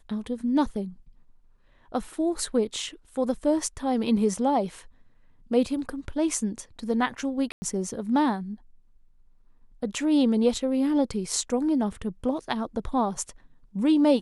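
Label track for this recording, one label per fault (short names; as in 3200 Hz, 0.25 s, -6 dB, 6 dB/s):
7.520000	7.620000	gap 0.1 s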